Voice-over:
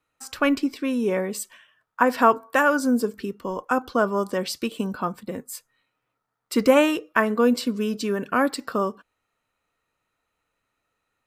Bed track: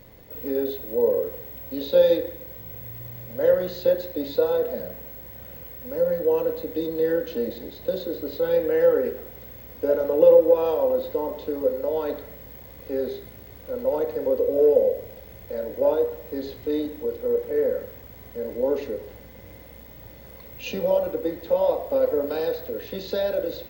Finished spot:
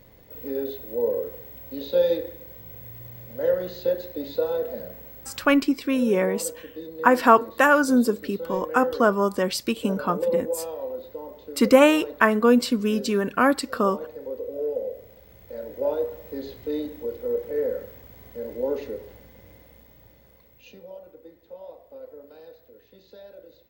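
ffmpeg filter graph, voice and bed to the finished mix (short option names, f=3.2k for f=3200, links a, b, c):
-filter_complex "[0:a]adelay=5050,volume=2dB[a];[1:a]volume=4dB,afade=t=out:st=5.38:d=0.21:silence=0.446684,afade=t=in:st=14.82:d=1.44:silence=0.421697,afade=t=out:st=18.95:d=1.91:silence=0.133352[b];[a][b]amix=inputs=2:normalize=0"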